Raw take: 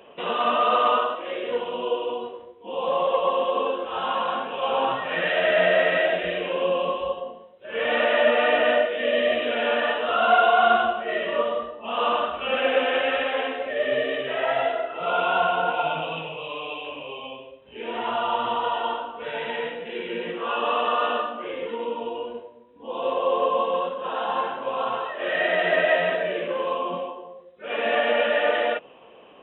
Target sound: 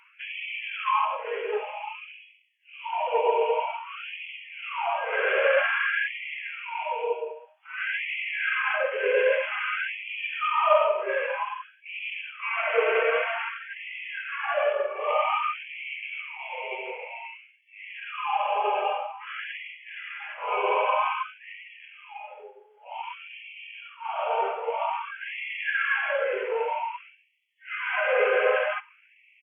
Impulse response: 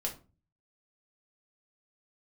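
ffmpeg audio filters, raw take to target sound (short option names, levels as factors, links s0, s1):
-filter_complex "[0:a]asetrate=38170,aresample=44100,atempo=1.15535,asplit=2[s0][s1];[1:a]atrim=start_sample=2205,adelay=42[s2];[s1][s2]afir=irnorm=-1:irlink=0,volume=0.0944[s3];[s0][s3]amix=inputs=2:normalize=0,afftfilt=real='re*gte(b*sr/1024,370*pow(1900/370,0.5+0.5*sin(2*PI*0.52*pts/sr)))':imag='im*gte(b*sr/1024,370*pow(1900/370,0.5+0.5*sin(2*PI*0.52*pts/sr)))':win_size=1024:overlap=0.75"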